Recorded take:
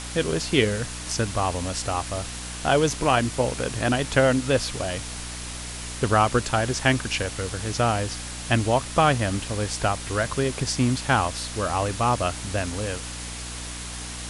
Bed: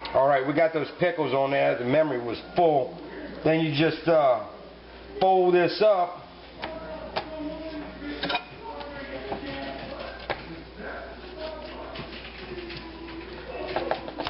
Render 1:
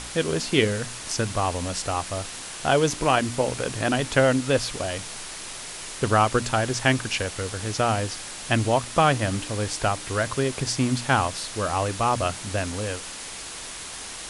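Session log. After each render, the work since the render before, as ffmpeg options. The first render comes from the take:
-af "bandreject=f=60:t=h:w=4,bandreject=f=120:t=h:w=4,bandreject=f=180:t=h:w=4,bandreject=f=240:t=h:w=4,bandreject=f=300:t=h:w=4"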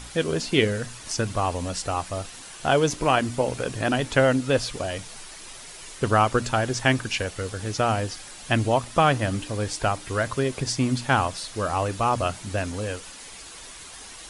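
-af "afftdn=nr=8:nf=-37"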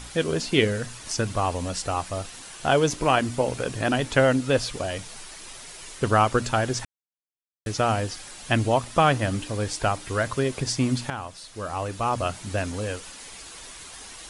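-filter_complex "[0:a]asplit=4[s0][s1][s2][s3];[s0]atrim=end=6.85,asetpts=PTS-STARTPTS,afade=t=out:st=6.846:d=0.004:c=hsin[s4];[s1]atrim=start=6.85:end=7.66,asetpts=PTS-STARTPTS,volume=0[s5];[s2]atrim=start=7.66:end=11.1,asetpts=PTS-STARTPTS,afade=t=in:d=0.004:c=hsin,afade=t=out:st=3.436:d=0.004:c=hsin:silence=0.199526[s6];[s3]atrim=start=11.1,asetpts=PTS-STARTPTS,afade=t=in:d=1.42:silence=0.199526[s7];[s4][s5][s6][s7]concat=n=4:v=0:a=1"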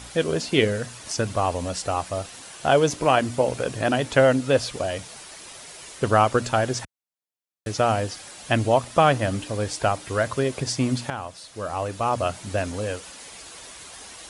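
-af "highpass=55,equalizer=f=600:w=1.9:g=4"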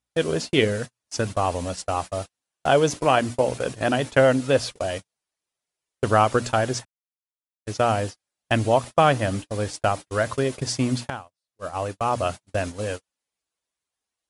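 -af "agate=range=0.00562:threshold=0.0355:ratio=16:detection=peak"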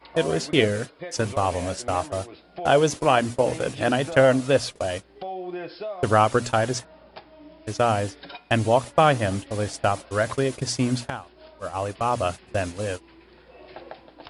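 -filter_complex "[1:a]volume=0.224[s0];[0:a][s0]amix=inputs=2:normalize=0"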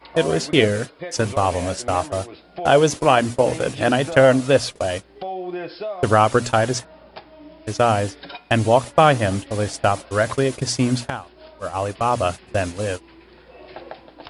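-af "volume=1.58,alimiter=limit=0.794:level=0:latency=1"

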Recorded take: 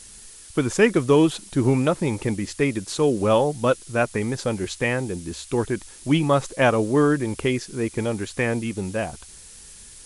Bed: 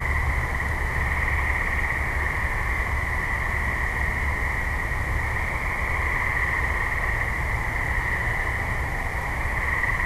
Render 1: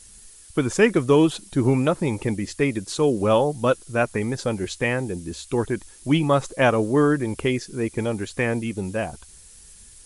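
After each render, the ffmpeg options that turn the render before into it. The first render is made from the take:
-af "afftdn=nr=6:nf=-45"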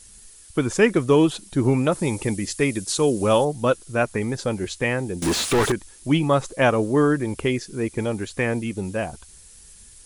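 -filter_complex "[0:a]asettb=1/sr,asplit=3[s0][s1][s2];[s0]atrim=end=1.924[s3];[s1]atrim=start=1.92:end=3.45,asetpts=PTS-STARTPTS,afade=t=in:d=0.004:c=qsin,afade=t=out:st=1.526:d=0.004:c=qsin,highshelf=f=4700:g=10[s4];[s2]atrim=start=3.446[s5];[s3][s4]acrossfade=d=0.004:c1=hsin:c2=qsin[s6];[s6][s5]acrossfade=d=0.004:c1=qsin:c2=hsin,asettb=1/sr,asplit=3[s7][s8][s9];[s7]atrim=end=5.224[s10];[s8]atrim=start=5.22:end=5.72,asetpts=PTS-STARTPTS,afade=t=in:d=0.004:c=qsin,afade=t=out:st=0.496:d=0.004:c=qsin,asplit=2[s11][s12];[s12]highpass=f=720:p=1,volume=79.4,asoftclip=type=tanh:threshold=0.251[s13];[s11][s13]amix=inputs=2:normalize=0,lowpass=f=3200:p=1,volume=0.501[s14];[s9]atrim=start=5.716[s15];[s10][s14]acrossfade=d=0.004:c1=hsin:c2=qsin[s16];[s16][s15]acrossfade=d=0.004:c1=qsin:c2=hsin"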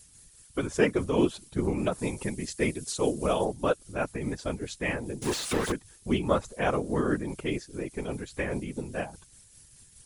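-af "tremolo=f=4.9:d=0.38,afftfilt=real='hypot(re,im)*cos(2*PI*random(0))':imag='hypot(re,im)*sin(2*PI*random(1))':win_size=512:overlap=0.75"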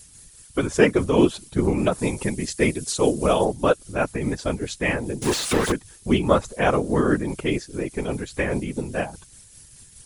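-af "volume=2.24"

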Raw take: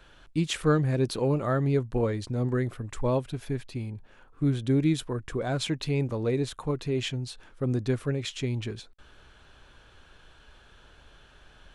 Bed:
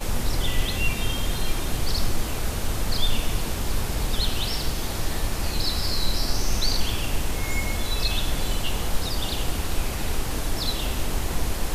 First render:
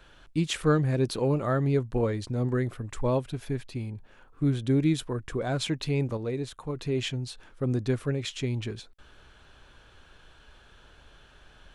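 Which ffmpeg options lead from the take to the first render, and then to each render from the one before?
-filter_complex "[0:a]asplit=3[s0][s1][s2];[s0]atrim=end=6.172[s3];[s1]atrim=start=6.168:end=6.762,asetpts=PTS-STARTPTS,volume=0.596[s4];[s2]atrim=start=6.758[s5];[s3][s4]acrossfade=d=0.004:c1=hsin:c2=hsin[s6];[s6][s5]acrossfade=d=0.004:c1=hsin:c2=hsin"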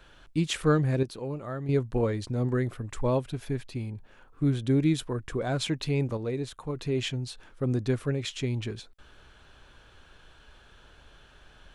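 -filter_complex "[0:a]asplit=3[s0][s1][s2];[s0]atrim=end=1.032[s3];[s1]atrim=start=1.028:end=1.692,asetpts=PTS-STARTPTS,volume=0.355[s4];[s2]atrim=start=1.688[s5];[s3][s4]acrossfade=d=0.004:c1=hsin:c2=hsin[s6];[s6][s5]acrossfade=d=0.004:c1=hsin:c2=hsin"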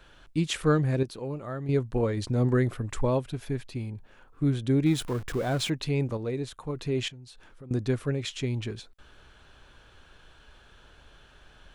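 -filter_complex "[0:a]asettb=1/sr,asplit=3[s0][s1][s2];[s0]atrim=end=4.864[s3];[s1]atrim=start=4.86:end=5.7,asetpts=PTS-STARTPTS,afade=t=in:d=0.004:c=qsin,afade=t=out:st=0.836:d=0.004:c=qsin,aeval=exprs='val(0)+0.5*0.0141*sgn(val(0))':c=same[s4];[s2]atrim=start=5.696[s5];[s3][s4]acrossfade=d=0.004:c1=hsin:c2=qsin[s6];[s6][s5]acrossfade=d=0.004:c1=qsin:c2=hsin,asettb=1/sr,asplit=3[s7][s8][s9];[s7]atrim=end=7.084[s10];[s8]atrim=start=7.08:end=7.71,asetpts=PTS-STARTPTS,afade=t=in:d=0.004:c=qsin,afade=t=out:st=0.626:d=0.004:c=qsin,acompressor=threshold=0.00398:ratio=3:attack=3.2:release=140:knee=1:detection=peak[s11];[s9]atrim=start=7.706[s12];[s10][s11]acrossfade=d=0.004:c1=hsin:c2=qsin[s13];[s13][s12]acrossfade=d=0.004:c1=qsin:c2=hsin,asplit=3[s14][s15][s16];[s14]atrim=end=2.172[s17];[s15]atrim=start=2.168:end=3.052,asetpts=PTS-STARTPTS,volume=1.5[s18];[s16]atrim=start=3.048[s19];[s17][s18]acrossfade=d=0.004:c1=hsin:c2=hsin[s20];[s20][s19]acrossfade=d=0.004:c1=hsin:c2=hsin"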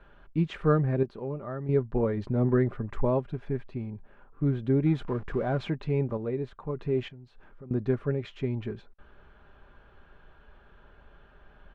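-af "lowpass=1600,aecho=1:1:5:0.31"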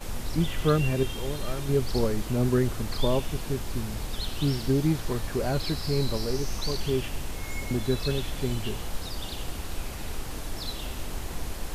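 -filter_complex "[1:a]volume=0.398[s0];[0:a][s0]amix=inputs=2:normalize=0"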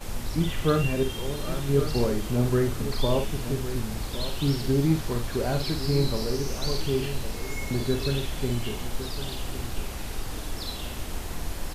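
-filter_complex "[0:a]asplit=2[s0][s1];[s1]adelay=50,volume=0.447[s2];[s0][s2]amix=inputs=2:normalize=0,asplit=2[s3][s4];[s4]aecho=0:1:1109:0.266[s5];[s3][s5]amix=inputs=2:normalize=0"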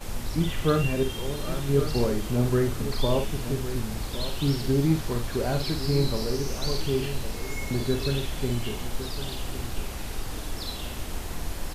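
-af anull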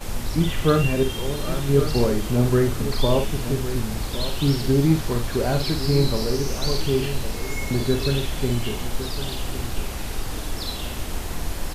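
-af "volume=1.68"

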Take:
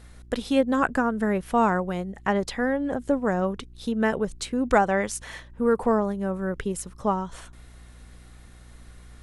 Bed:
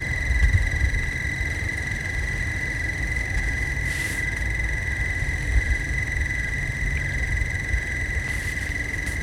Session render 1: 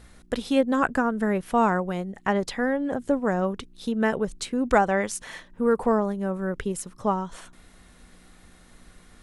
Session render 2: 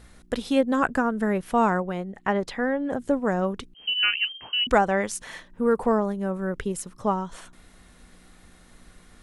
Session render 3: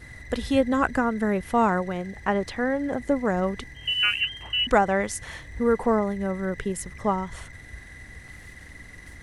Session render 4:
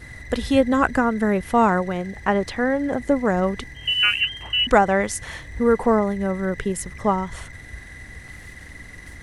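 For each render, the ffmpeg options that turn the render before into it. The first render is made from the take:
-af "bandreject=f=60:t=h:w=4,bandreject=f=120:t=h:w=4"
-filter_complex "[0:a]asettb=1/sr,asplit=3[s0][s1][s2];[s0]atrim=end=1.824[s3];[s1]atrim=start=1.82:end=2.9,asetpts=PTS-STARTPTS,afade=t=in:d=0.004:c=qsin,afade=t=out:st=1.076:d=0.004:c=qsin,bass=f=250:g=-2,treble=f=4000:g=-7[s4];[s2]atrim=start=2.896[s5];[s3][s4]acrossfade=d=0.004:c1=hsin:c2=qsin[s6];[s6][s5]acrossfade=d=0.004:c1=qsin:c2=hsin,asettb=1/sr,asplit=3[s7][s8][s9];[s7]atrim=end=3.744[s10];[s8]atrim=start=3.74:end=4.67,asetpts=PTS-STARTPTS,afade=t=in:d=0.004:c=qsin,afade=t=out:st=0.926:d=0.004:c=qsin,lowpass=f=2700:t=q:w=0.5098,lowpass=f=2700:t=q:w=0.6013,lowpass=f=2700:t=q:w=0.9,lowpass=f=2700:t=q:w=2.563,afreqshift=-3200[s11];[s9]atrim=start=4.666[s12];[s10][s11]acrossfade=d=0.004:c1=hsin:c2=qsin[s13];[s13][s12]acrossfade=d=0.004:c1=qsin:c2=hsin"
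-filter_complex "[1:a]volume=0.126[s0];[0:a][s0]amix=inputs=2:normalize=0"
-af "volume=1.58"

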